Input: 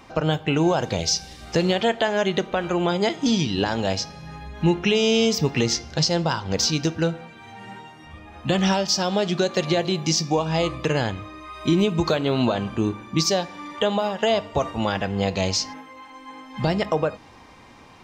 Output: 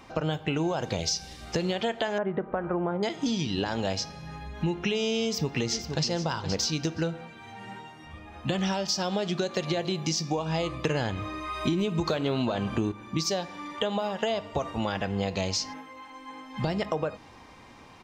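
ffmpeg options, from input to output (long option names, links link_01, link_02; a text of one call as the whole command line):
ffmpeg -i in.wav -filter_complex "[0:a]asettb=1/sr,asplit=3[link_01][link_02][link_03];[link_01]atrim=end=2.184[link_04];[link_02]atrim=start=2.18:end=3.03,asetpts=PTS-STARTPTS,afade=type=in:duration=0.004:curve=qsin,afade=type=out:start_time=0.846:duration=0.004:curve=qsin,lowpass=frequency=1600:width=0.5412,lowpass=frequency=1600:width=1.3066[link_05];[link_03]atrim=start=3.026[link_06];[link_04][link_05]acrossfade=duration=0.004:curve1=hsin:curve2=qsin[link_07];[link_07][link_06]acrossfade=duration=0.004:curve1=qsin:curve2=hsin,asplit=2[link_08][link_09];[link_09]afade=type=in:start_time=5.25:duration=0.01,afade=type=out:start_time=6.1:duration=0.01,aecho=0:1:470|940:0.266073|0.0399109[link_10];[link_08][link_10]amix=inputs=2:normalize=0,asettb=1/sr,asplit=3[link_11][link_12][link_13];[link_11]atrim=end=10.854[link_14];[link_12]atrim=start=10.85:end=12.92,asetpts=PTS-STARTPTS,afade=type=in:duration=0.004:curve=qsin,afade=type=out:start_time=2.066:duration=0.004:curve=qsin,acontrast=65[link_15];[link_13]atrim=start=12.916[link_16];[link_14][link_15]acrossfade=duration=0.004:curve1=hsin:curve2=qsin[link_17];[link_17][link_16]acrossfade=duration=0.004:curve1=qsin:curve2=hsin,acompressor=threshold=-22dB:ratio=6,volume=-2.5dB" out.wav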